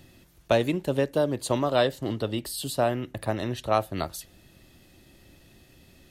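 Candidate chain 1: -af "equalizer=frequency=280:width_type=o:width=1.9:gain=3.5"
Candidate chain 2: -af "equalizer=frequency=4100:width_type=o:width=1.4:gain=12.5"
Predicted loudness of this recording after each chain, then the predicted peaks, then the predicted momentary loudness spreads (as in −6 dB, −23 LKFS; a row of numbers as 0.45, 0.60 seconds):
−25.5, −25.0 LKFS; −7.5, −6.0 dBFS; 8, 9 LU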